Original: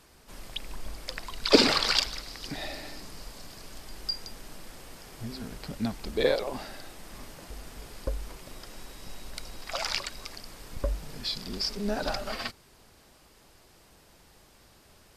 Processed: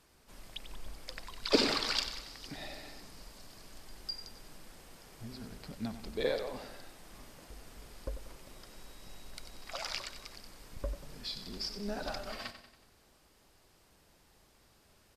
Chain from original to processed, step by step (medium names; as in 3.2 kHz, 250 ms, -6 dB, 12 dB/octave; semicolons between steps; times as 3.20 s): feedback delay 93 ms, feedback 50%, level -11 dB; trim -8 dB